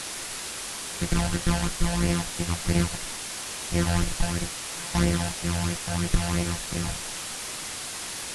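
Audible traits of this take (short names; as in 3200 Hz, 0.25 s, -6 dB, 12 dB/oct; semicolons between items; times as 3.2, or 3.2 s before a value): a buzz of ramps at a fixed pitch in blocks of 256 samples; phasing stages 12, 3 Hz, lowest notch 350–1300 Hz; a quantiser's noise floor 6-bit, dither triangular; AAC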